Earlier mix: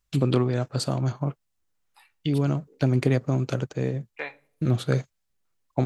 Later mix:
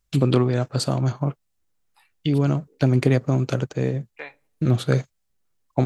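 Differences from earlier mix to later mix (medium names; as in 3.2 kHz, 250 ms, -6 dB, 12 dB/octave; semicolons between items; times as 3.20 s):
first voice +3.5 dB; second voice: send -9.5 dB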